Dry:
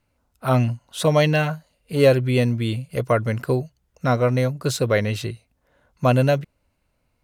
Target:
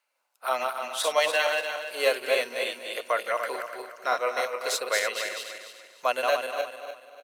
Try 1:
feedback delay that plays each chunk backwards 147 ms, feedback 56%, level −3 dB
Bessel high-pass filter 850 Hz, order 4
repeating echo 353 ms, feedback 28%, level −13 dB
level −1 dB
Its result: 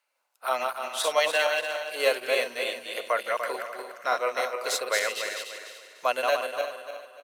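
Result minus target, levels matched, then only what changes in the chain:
echo 112 ms late
change: repeating echo 241 ms, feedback 28%, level −13 dB

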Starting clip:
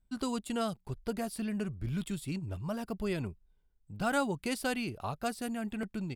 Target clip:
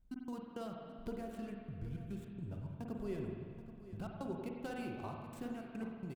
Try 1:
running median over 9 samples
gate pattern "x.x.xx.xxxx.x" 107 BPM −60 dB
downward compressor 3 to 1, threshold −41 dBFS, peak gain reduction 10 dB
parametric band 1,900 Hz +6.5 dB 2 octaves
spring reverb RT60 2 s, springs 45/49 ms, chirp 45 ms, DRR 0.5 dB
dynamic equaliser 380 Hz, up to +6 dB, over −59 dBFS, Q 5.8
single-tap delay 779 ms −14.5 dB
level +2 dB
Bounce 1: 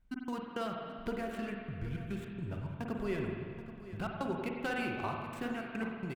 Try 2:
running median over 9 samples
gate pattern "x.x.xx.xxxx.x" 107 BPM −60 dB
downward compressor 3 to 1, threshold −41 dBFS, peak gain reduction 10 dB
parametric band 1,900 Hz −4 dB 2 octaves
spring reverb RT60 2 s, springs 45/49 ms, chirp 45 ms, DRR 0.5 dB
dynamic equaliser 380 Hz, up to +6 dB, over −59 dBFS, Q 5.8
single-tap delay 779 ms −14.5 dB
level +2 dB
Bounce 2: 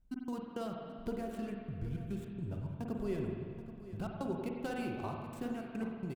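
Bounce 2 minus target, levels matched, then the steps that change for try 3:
downward compressor: peak gain reduction −4.5 dB
change: downward compressor 3 to 1, threshold −47.5 dBFS, peak gain reduction 14.5 dB

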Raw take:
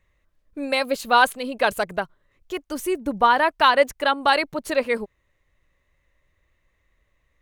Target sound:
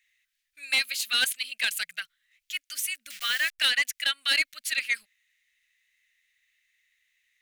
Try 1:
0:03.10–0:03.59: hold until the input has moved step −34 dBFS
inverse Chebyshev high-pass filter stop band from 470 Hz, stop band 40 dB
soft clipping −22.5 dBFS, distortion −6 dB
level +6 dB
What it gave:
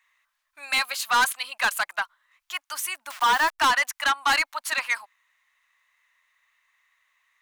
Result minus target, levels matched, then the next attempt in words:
1,000 Hz band +16.5 dB
0:03.10–0:03.59: hold until the input has moved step −34 dBFS
inverse Chebyshev high-pass filter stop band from 1,000 Hz, stop band 40 dB
soft clipping −22.5 dBFS, distortion −12 dB
level +6 dB

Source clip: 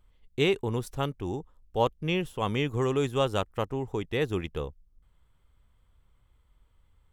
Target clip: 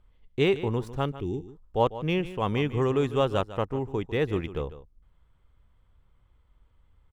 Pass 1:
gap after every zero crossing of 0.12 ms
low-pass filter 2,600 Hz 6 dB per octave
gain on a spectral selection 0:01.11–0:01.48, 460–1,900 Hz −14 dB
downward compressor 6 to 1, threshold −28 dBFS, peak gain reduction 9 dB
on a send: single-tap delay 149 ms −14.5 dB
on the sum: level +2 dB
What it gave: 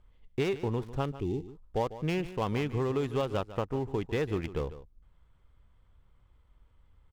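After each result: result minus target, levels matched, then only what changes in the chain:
gap after every zero crossing: distortion +17 dB; downward compressor: peak gain reduction +9 dB
change: gap after every zero crossing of 0.024 ms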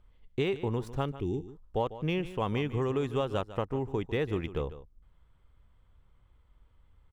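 downward compressor: peak gain reduction +9 dB
remove: downward compressor 6 to 1, threshold −28 dBFS, peak gain reduction 9 dB

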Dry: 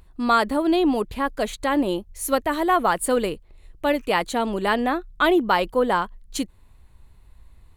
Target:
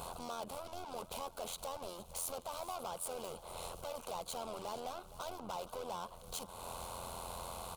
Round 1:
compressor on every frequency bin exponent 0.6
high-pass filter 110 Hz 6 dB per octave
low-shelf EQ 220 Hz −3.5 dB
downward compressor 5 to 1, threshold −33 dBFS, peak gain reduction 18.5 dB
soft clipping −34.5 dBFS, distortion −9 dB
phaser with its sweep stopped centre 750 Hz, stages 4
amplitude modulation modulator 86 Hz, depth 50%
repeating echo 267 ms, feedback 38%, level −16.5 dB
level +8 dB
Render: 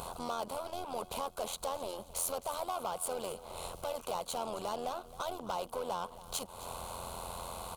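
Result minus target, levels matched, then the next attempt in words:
echo 200 ms early; soft clipping: distortion −5 dB
compressor on every frequency bin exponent 0.6
high-pass filter 110 Hz 6 dB per octave
low-shelf EQ 220 Hz −3.5 dB
downward compressor 5 to 1, threshold −33 dBFS, peak gain reduction 18.5 dB
soft clipping −42.5 dBFS, distortion −4 dB
phaser with its sweep stopped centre 750 Hz, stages 4
amplitude modulation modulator 86 Hz, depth 50%
repeating echo 467 ms, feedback 38%, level −16.5 dB
level +8 dB

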